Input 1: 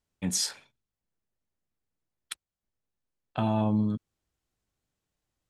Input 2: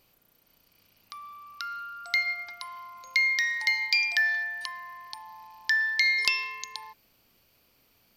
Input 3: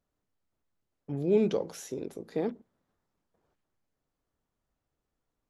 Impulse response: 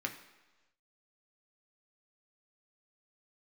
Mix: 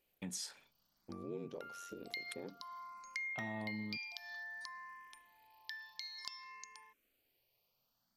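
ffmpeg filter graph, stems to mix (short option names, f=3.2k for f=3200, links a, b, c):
-filter_complex "[0:a]volume=-4dB[a];[1:a]dynaudnorm=f=260:g=11:m=11.5dB,asplit=2[b][c];[c]afreqshift=0.56[d];[b][d]amix=inputs=2:normalize=1,volume=-13dB[e];[2:a]aeval=exprs='val(0)*sin(2*PI*45*n/s)':c=same,volume=-5.5dB[f];[a][e][f]amix=inputs=3:normalize=0,equalizer=f=75:t=o:w=0.96:g=-10.5,acompressor=threshold=-46dB:ratio=2.5"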